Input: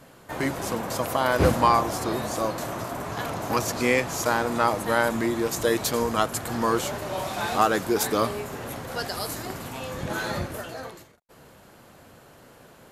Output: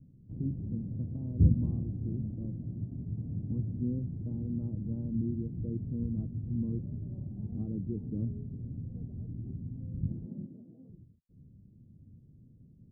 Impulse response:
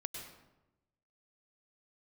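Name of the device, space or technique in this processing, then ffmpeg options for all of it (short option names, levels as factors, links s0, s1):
the neighbour's flat through the wall: -filter_complex "[0:a]asettb=1/sr,asplit=3[s0][s1][s2];[s0]atrim=end=10.264[s3];[s1]atrim=start=10.26:end=10.89,asetpts=PTS-STARTPTS,afade=t=in:d=0.004:c=qsin,afade=t=out:st=0.626:d=0.004:c=qsin,highpass=f=190:w=0.5412,highpass=f=190:w=1.3066[s4];[s2]atrim=start=10.886[s5];[s3][s4]acrossfade=d=0.004:c1=hsin:c2=qsin[s6];[s6][s5]acrossfade=d=0.004:c1=qsin:c2=hsin,lowpass=f=220:w=0.5412,lowpass=f=220:w=1.3066,equalizer=f=100:t=o:w=0.59:g=4.5"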